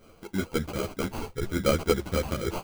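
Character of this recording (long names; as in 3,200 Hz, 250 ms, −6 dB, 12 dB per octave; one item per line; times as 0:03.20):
tremolo triangle 3.7 Hz, depth 35%
aliases and images of a low sample rate 1,800 Hz, jitter 0%
a shimmering, thickened sound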